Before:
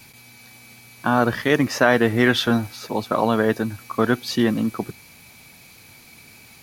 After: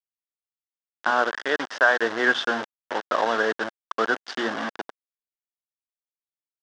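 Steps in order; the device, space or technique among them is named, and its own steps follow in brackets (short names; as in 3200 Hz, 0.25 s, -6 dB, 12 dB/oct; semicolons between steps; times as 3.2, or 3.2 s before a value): 1.1–2.01 HPF 200 Hz -> 590 Hz 6 dB/oct; notches 60/120/180/240 Hz; hand-held game console (bit-crush 4-bit; speaker cabinet 460–4700 Hz, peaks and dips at 1600 Hz +7 dB, 2400 Hz -8 dB, 4200 Hz -7 dB); dynamic EQ 2100 Hz, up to -4 dB, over -32 dBFS, Q 2.7; gain -1.5 dB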